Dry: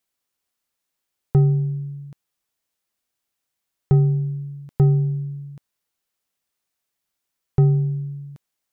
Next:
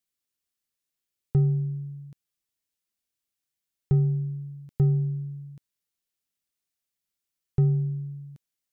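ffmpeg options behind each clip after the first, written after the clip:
ffmpeg -i in.wav -af "equalizer=frequency=880:width=0.65:gain=-8,volume=-5dB" out.wav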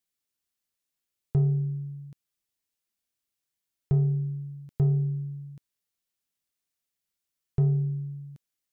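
ffmpeg -i in.wav -af "asoftclip=type=tanh:threshold=-15.5dB" out.wav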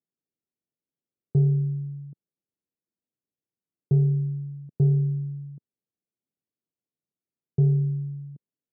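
ffmpeg -i in.wav -af "asuperpass=centerf=240:order=4:qfactor=0.64,volume=4dB" out.wav

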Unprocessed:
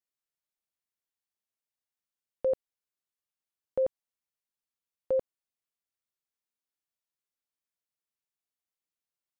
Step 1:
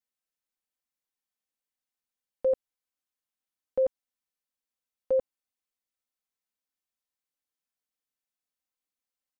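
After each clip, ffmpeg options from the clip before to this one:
ffmpeg -i in.wav -af "aecho=1:1:3.9:0.68,volume=-2dB" out.wav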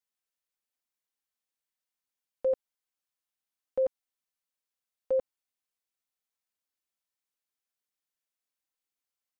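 ffmpeg -i in.wav -af "lowshelf=frequency=460:gain=-5" out.wav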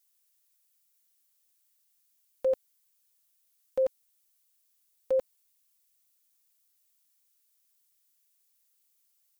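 ffmpeg -i in.wav -af "crystalizer=i=5.5:c=0" out.wav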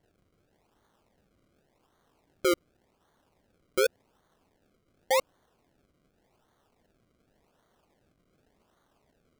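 ffmpeg -i in.wav -af "acrusher=samples=34:mix=1:aa=0.000001:lfo=1:lforange=34:lforate=0.88,volume=1.5dB" out.wav

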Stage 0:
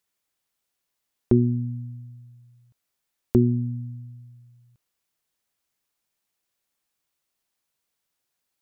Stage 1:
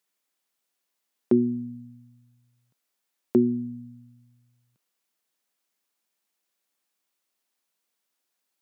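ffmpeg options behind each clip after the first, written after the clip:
ffmpeg -i in.wav -af "highpass=frequency=180:width=0.5412,highpass=frequency=180:width=1.3066" out.wav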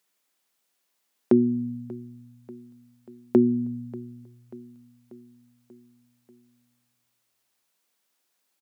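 ffmpeg -i in.wav -filter_complex "[0:a]asplit=2[link_01][link_02];[link_02]acompressor=threshold=-29dB:ratio=6,volume=-2dB[link_03];[link_01][link_03]amix=inputs=2:normalize=0,aecho=1:1:588|1176|1764|2352|2940:0.1|0.059|0.0348|0.0205|0.0121" out.wav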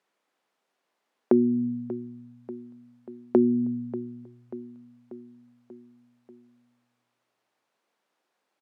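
ffmpeg -i in.wav -af "alimiter=limit=-14dB:level=0:latency=1:release=331,bandpass=frequency=590:width_type=q:width=0.54:csg=0,volume=7dB" out.wav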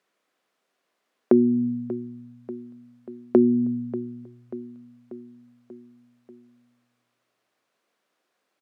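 ffmpeg -i in.wav -af "equalizer=frequency=870:width_type=o:width=0.23:gain=-7.5,volume=3dB" out.wav

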